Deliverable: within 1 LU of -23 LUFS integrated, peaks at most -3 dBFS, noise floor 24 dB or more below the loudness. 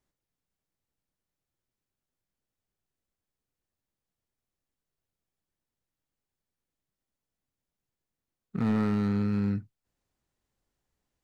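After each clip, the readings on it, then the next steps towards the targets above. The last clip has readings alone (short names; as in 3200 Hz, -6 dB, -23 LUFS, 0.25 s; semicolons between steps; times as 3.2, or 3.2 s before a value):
clipped 0.3%; flat tops at -21.0 dBFS; loudness -28.5 LUFS; peak -21.0 dBFS; loudness target -23.0 LUFS
-> clip repair -21 dBFS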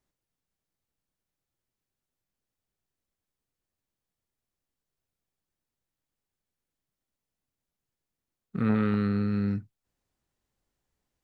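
clipped 0.0%; loudness -28.0 LUFS; peak -14.0 dBFS; loudness target -23.0 LUFS
-> gain +5 dB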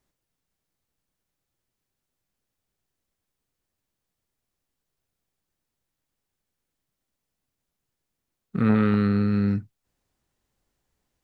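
loudness -23.0 LUFS; peak -9.0 dBFS; noise floor -84 dBFS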